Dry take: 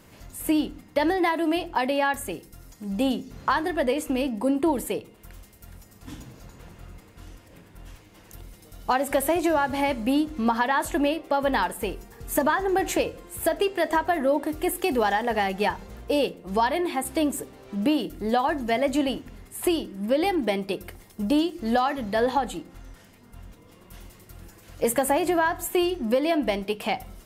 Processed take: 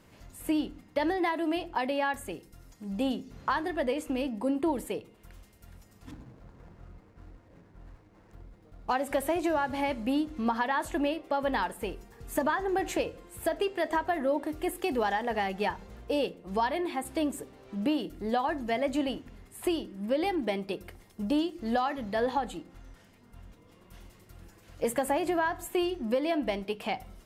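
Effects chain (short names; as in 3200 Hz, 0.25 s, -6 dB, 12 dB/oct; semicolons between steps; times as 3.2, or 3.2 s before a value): 6.11–8.91 median filter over 15 samples; high shelf 8700 Hz -8 dB; gain -5.5 dB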